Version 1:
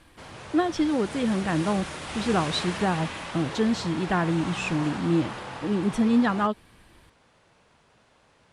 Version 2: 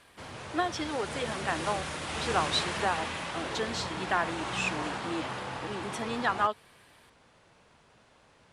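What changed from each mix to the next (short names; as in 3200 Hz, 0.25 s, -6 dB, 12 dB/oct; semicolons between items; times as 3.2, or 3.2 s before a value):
speech: add HPF 630 Hz 12 dB/oct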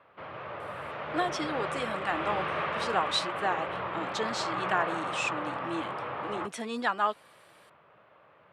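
speech: entry +0.60 s; background: add speaker cabinet 130–2800 Hz, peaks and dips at 240 Hz -8 dB, 590 Hz +7 dB, 1200 Hz +8 dB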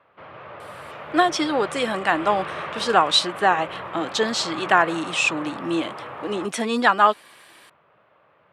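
speech +11.5 dB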